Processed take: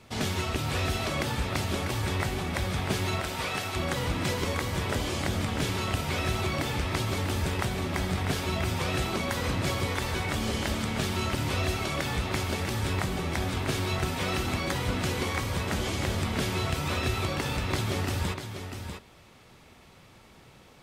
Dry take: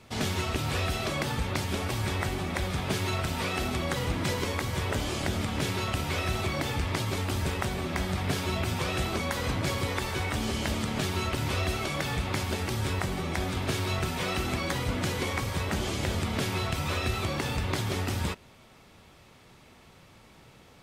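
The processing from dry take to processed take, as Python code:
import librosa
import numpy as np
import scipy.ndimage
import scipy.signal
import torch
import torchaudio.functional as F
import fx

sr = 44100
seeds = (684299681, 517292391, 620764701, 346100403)

y = fx.highpass(x, sr, hz=fx.line((3.2, 250.0), (3.75, 690.0)), slope=12, at=(3.2, 3.75), fade=0.02)
y = y + 10.0 ** (-8.0 / 20.0) * np.pad(y, (int(645 * sr / 1000.0), 0))[:len(y)]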